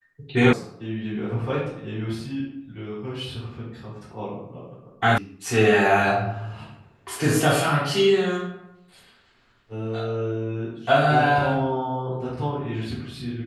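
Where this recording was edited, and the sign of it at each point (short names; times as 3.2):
0.53 sound cut off
5.18 sound cut off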